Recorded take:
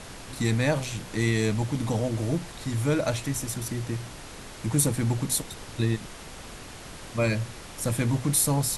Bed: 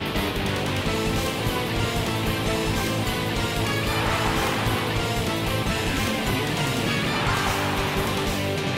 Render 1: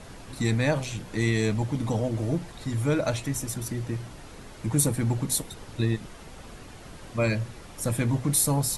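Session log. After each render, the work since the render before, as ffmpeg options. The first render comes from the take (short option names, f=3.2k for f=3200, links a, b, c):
-af "afftdn=nr=7:nf=-43"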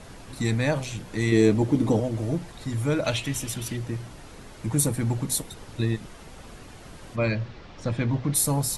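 -filter_complex "[0:a]asettb=1/sr,asplit=3[a][b][c];[a]atrim=end=1.324[d];[b]atrim=start=1.32:end=2,asetpts=PTS-STARTPTS,afade=t=in:d=0.004:c=qsin,afade=t=out:st=0.676:d=0.004:c=qsin,equalizer=f=340:t=o:w=1.2:g=12[e];[c]atrim=start=1.996[f];[d][e]acrossfade=d=0.004:c1=hsin:c2=qsin[g];[g][f]acrossfade=d=0.004:c1=qsin:c2=hsin,asettb=1/sr,asplit=3[h][i][j];[h]atrim=end=3.044[k];[i]atrim=start=3.04:end=3.77,asetpts=PTS-STARTPTS,afade=t=in:d=0.004:c=qsin,afade=t=out:st=0.726:d=0.004:c=qsin,equalizer=f=3k:w=1.7:g=12[l];[j]atrim=start=3.766[m];[k][l]acrossfade=d=0.004:c1=hsin:c2=qsin[n];[n][m]acrossfade=d=0.004:c1=qsin:c2=hsin,asplit=3[o][p][q];[o]afade=t=out:st=7.15:d=0.02[r];[p]lowpass=f=5k:w=0.5412,lowpass=f=5k:w=1.3066,afade=t=in:st=7.15:d=0.02,afade=t=out:st=8.34:d=0.02[s];[q]afade=t=in:st=8.34:d=0.02[t];[r][s][t]amix=inputs=3:normalize=0"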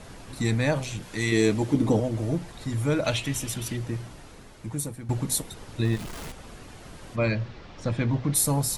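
-filter_complex "[0:a]asettb=1/sr,asplit=3[a][b][c];[a]atrim=end=1.024[d];[b]atrim=start=1.02:end=1.74,asetpts=PTS-STARTPTS,afade=t=in:d=0.004:c=qsin,afade=t=out:st=0.716:d=0.004:c=qsin,tiltshelf=f=1.1k:g=-4[e];[c]atrim=start=1.736[f];[d][e]acrossfade=d=0.004:c1=hsin:c2=qsin[g];[g][f]acrossfade=d=0.004:c1=qsin:c2=hsin,asettb=1/sr,asplit=3[h][i][j];[h]atrim=end=5.854[k];[i]atrim=start=5.85:end=6.32,asetpts=PTS-STARTPTS,afade=t=in:d=0.004:c=qsin,afade=t=out:st=0.466:d=0.004:c=qsin,aeval=exprs='val(0)+0.5*0.0178*sgn(val(0))':c=same[l];[j]atrim=start=6.316[m];[k][l]acrossfade=d=0.004:c1=hsin:c2=qsin[n];[n][m]acrossfade=d=0.004:c1=qsin:c2=hsin,asplit=2[o][p];[o]atrim=end=5.09,asetpts=PTS-STARTPTS,afade=t=out:st=3.99:d=1.1:silence=0.177828[q];[p]atrim=start=5.09,asetpts=PTS-STARTPTS,afade=t=in:d=0.004:c=hsin:silence=0.177828[r];[q][r]concat=n=2:v=0:a=1"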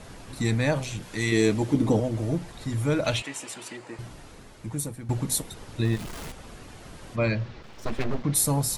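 -filter_complex "[0:a]asettb=1/sr,asplit=3[a][b][c];[a]atrim=end=3.224[d];[b]atrim=start=3.22:end=3.99,asetpts=PTS-STARTPTS,afade=t=in:d=0.004:c=qsin,afade=t=out:st=0.766:d=0.004:c=qsin,highpass=420,equalizer=f=900:t=q:w=4:g=4,equalizer=f=3.4k:t=q:w=4:g=-7,equalizer=f=5.8k:t=q:w=4:g=-8,lowpass=f=8.7k:w=0.5412,lowpass=f=8.7k:w=1.3066[e];[c]atrim=start=3.986[f];[d][e]acrossfade=d=0.004:c1=hsin:c2=qsin[g];[g][f]acrossfade=d=0.004:c1=qsin:c2=hsin,asplit=3[h][i][j];[h]afade=t=out:st=7.62:d=0.02[k];[i]aeval=exprs='abs(val(0))':c=same,afade=t=in:st=7.62:d=0.02,afade=t=out:st=8.22:d=0.02[l];[j]afade=t=in:st=8.22:d=0.02[m];[k][l][m]amix=inputs=3:normalize=0"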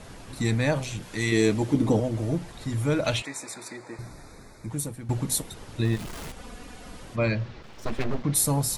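-filter_complex "[0:a]asettb=1/sr,asplit=3[a][b][c];[a]atrim=end=3.254[d];[b]atrim=start=3.25:end=4.7,asetpts=PTS-STARTPTS,afade=t=in:d=0.004:c=qsin,afade=t=out:st=1.446:d=0.004:c=qsin,asuperstop=centerf=3000:order=12:qfactor=2.9[e];[c]atrim=start=4.696[f];[d][e]acrossfade=d=0.004:c1=hsin:c2=qsin[g];[g][f]acrossfade=d=0.004:c1=qsin:c2=hsin,asettb=1/sr,asplit=3[h][i][j];[h]atrim=end=6.364[k];[i]atrim=start=6.36:end=7.03,asetpts=PTS-STARTPTS,afade=t=in:d=0.004:c=qsin,afade=t=out:st=0.666:d=0.004:c=qsin,aecho=1:1:4.1:0.65,atrim=end_sample=29547[l];[j]atrim=start=7.026[m];[k][l]acrossfade=d=0.004:c1=hsin:c2=qsin[n];[n][m]acrossfade=d=0.004:c1=qsin:c2=hsin"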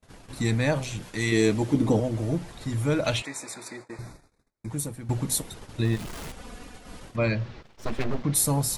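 -af "agate=range=-39dB:threshold=-42dB:ratio=16:detection=peak"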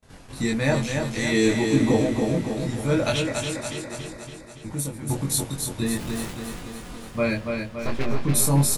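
-filter_complex "[0:a]asplit=2[a][b];[b]adelay=22,volume=-2dB[c];[a][c]amix=inputs=2:normalize=0,aecho=1:1:283|566|849|1132|1415|1698|1981|2264:0.562|0.326|0.189|0.11|0.0636|0.0369|0.0214|0.0124"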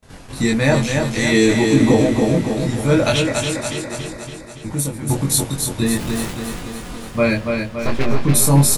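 -af "volume=7dB,alimiter=limit=-3dB:level=0:latency=1"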